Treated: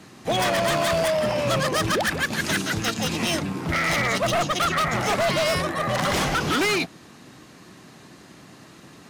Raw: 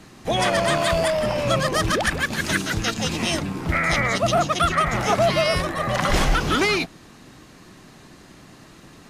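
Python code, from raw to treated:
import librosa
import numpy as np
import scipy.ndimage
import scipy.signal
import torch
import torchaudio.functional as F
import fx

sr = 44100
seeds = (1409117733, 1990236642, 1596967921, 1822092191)

y = scipy.signal.sosfilt(scipy.signal.butter(2, 98.0, 'highpass', fs=sr, output='sos'), x)
y = 10.0 ** (-16.5 / 20.0) * (np.abs((y / 10.0 ** (-16.5 / 20.0) + 3.0) % 4.0 - 2.0) - 1.0)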